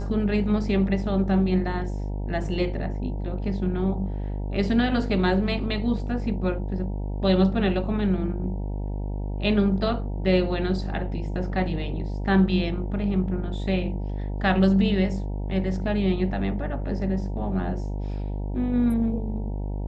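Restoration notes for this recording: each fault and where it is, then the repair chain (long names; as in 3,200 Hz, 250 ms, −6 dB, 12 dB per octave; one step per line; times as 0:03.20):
mains buzz 50 Hz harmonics 19 −29 dBFS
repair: hum removal 50 Hz, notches 19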